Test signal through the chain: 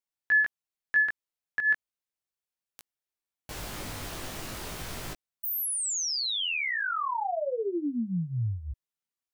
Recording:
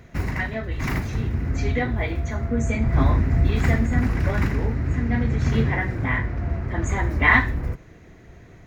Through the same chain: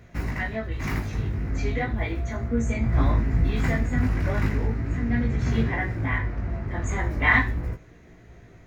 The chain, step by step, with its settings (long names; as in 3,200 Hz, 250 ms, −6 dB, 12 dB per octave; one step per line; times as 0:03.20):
chorus effect 0.37 Hz, delay 17 ms, depth 2.7 ms